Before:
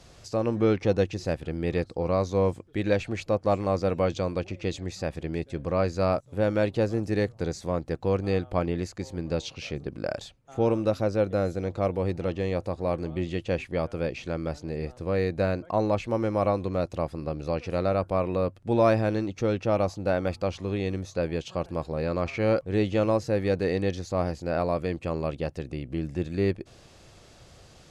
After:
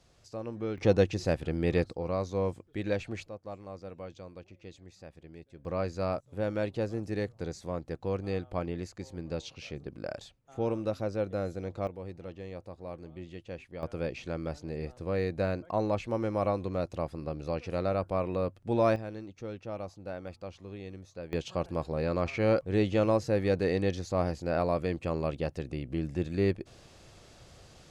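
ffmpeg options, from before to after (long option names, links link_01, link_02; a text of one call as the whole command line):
ffmpeg -i in.wav -af "asetnsamples=nb_out_samples=441:pad=0,asendcmd='0.78 volume volume 0dB;1.93 volume volume -6.5dB;3.28 volume volume -18dB;5.65 volume volume -7dB;11.87 volume volume -14dB;13.83 volume volume -4.5dB;18.96 volume volume -14dB;21.33 volume volume -2dB',volume=-12dB" out.wav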